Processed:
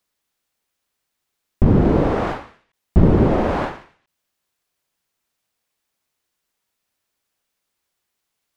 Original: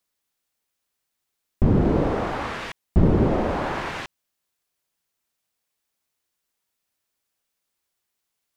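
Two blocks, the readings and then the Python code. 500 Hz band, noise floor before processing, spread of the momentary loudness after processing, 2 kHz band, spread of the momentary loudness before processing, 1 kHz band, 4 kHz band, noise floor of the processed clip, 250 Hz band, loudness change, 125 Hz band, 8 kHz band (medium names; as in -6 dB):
+4.0 dB, -80 dBFS, 12 LU, 0.0 dB, 13 LU, +2.5 dB, -2.5 dB, -78 dBFS, +4.5 dB, +5.0 dB, +4.5 dB, no reading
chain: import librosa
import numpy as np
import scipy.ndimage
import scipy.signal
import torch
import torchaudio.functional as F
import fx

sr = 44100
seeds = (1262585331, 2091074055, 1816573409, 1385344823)

y = fx.high_shelf(x, sr, hz=5300.0, db=-4.0)
y = fx.end_taper(y, sr, db_per_s=130.0)
y = F.gain(torch.from_numpy(y), 4.5).numpy()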